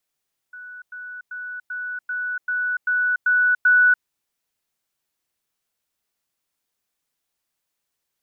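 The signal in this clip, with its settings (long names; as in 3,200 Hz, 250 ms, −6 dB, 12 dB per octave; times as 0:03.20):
level staircase 1,480 Hz −35.5 dBFS, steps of 3 dB, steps 9, 0.29 s 0.10 s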